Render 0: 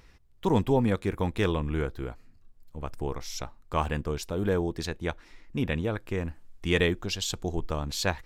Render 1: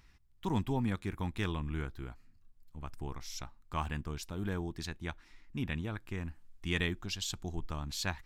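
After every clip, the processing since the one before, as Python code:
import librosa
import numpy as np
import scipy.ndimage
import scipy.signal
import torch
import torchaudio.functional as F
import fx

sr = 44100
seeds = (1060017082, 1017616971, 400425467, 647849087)

y = fx.peak_eq(x, sr, hz=500.0, db=-12.0, octaves=0.76)
y = y * 10.0 ** (-6.0 / 20.0)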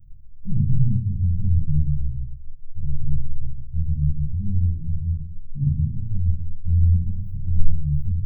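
y = scipy.signal.sosfilt(scipy.signal.cheby2(4, 70, [610.0, 9100.0], 'bandstop', fs=sr, output='sos'), x)
y = fx.room_shoebox(y, sr, seeds[0], volume_m3=400.0, walls='furnished', distance_m=4.1)
y = y * 10.0 ** (9.0 / 20.0)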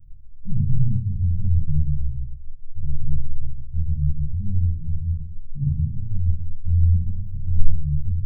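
y = fx.low_shelf(x, sr, hz=160.0, db=7.5)
y = y * 10.0 ** (-6.0 / 20.0)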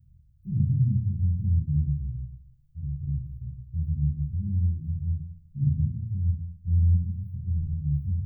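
y = scipy.signal.sosfilt(scipy.signal.butter(2, 89.0, 'highpass', fs=sr, output='sos'), x)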